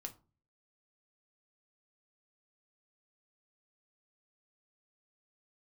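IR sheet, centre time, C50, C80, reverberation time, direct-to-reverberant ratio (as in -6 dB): 7 ms, 16.5 dB, 23.0 dB, 0.35 s, 3.5 dB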